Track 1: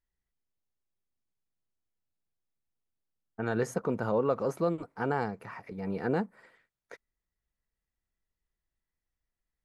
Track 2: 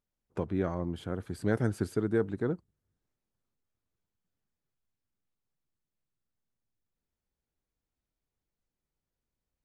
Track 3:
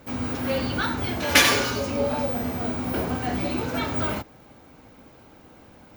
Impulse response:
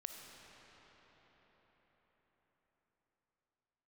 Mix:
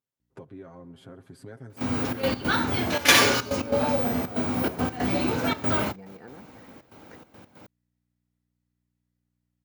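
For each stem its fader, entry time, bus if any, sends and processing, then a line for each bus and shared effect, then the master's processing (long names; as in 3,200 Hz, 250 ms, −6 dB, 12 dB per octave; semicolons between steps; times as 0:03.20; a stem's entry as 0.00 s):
−3.0 dB, 0.20 s, bus A, no send, downward compressor, threshold −29 dBFS, peak gain reduction 7.5 dB; mains hum 60 Hz, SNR 31 dB
−6.0 dB, 0.00 s, bus A, send −17.5 dB, comb filter 7.5 ms, depth 72%
+2.0 dB, 1.70 s, no bus, no send, gate pattern ".xxx.x.xxxxx" 141 BPM −12 dB
bus A: 0.0 dB, downward compressor 6 to 1, threshold −42 dBFS, peak gain reduction 14.5 dB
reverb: on, RT60 5.5 s, pre-delay 15 ms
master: high-pass filter 86 Hz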